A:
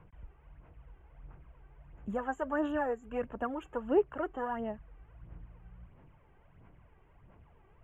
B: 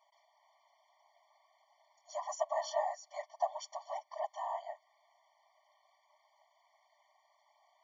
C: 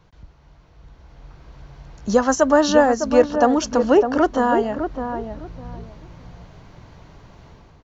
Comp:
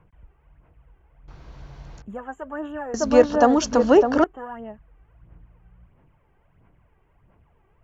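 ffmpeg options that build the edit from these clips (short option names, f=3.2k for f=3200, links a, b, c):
-filter_complex "[2:a]asplit=2[a][b];[0:a]asplit=3[c][d][e];[c]atrim=end=1.282[f];[a]atrim=start=1.278:end=2.022[g];[d]atrim=start=2.018:end=2.942[h];[b]atrim=start=2.938:end=4.242[i];[e]atrim=start=4.238[j];[f][g]acrossfade=d=0.004:c1=hsin:c2=hsin[k];[k][h]acrossfade=d=0.004:c1=hsin:c2=hsin[l];[l][i]acrossfade=d=0.004:c1=hsin:c2=hsin[m];[m][j]acrossfade=d=0.004:c1=hsin:c2=hsin"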